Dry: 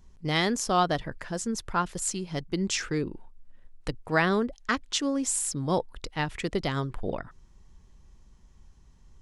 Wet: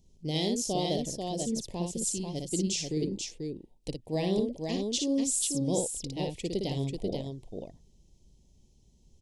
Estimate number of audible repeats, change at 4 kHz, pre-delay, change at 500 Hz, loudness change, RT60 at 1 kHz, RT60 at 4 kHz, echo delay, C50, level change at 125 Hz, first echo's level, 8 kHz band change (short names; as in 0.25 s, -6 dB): 2, -1.5 dB, none, -1.5 dB, -2.5 dB, none, none, 58 ms, none, -1.5 dB, -4.5 dB, 0.0 dB